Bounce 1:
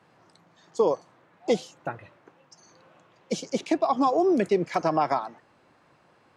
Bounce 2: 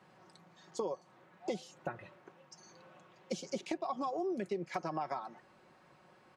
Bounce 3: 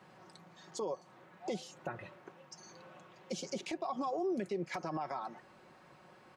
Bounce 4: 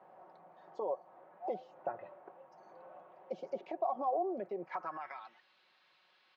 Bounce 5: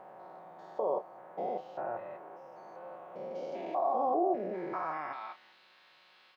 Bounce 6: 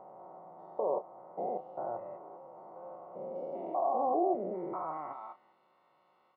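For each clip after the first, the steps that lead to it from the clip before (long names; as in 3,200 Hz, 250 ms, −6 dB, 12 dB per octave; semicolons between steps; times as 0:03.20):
comb filter 5.4 ms, depth 45%; downward compressor 5 to 1, threshold −32 dBFS, peak gain reduction 15 dB; level −3 dB
brickwall limiter −32 dBFS, peak gain reduction 10 dB; level +3.5 dB
band-pass filter sweep 690 Hz → 3,800 Hz, 0:04.57–0:05.39; high-frequency loss of the air 150 metres; level +7 dB
spectrum averaged block by block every 200 ms; double-tracking delay 32 ms −11 dB; level +9 dB
Savitzky-Golay smoothing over 65 samples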